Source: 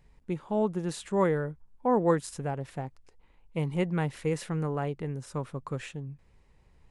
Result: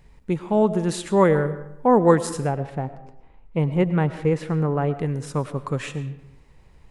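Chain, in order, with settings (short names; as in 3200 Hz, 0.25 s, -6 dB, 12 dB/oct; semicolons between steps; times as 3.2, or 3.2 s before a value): 2.49–4.94 LPF 1600 Hz 6 dB/oct; digital reverb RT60 0.82 s, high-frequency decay 0.65×, pre-delay 65 ms, DRR 13 dB; gain +8.5 dB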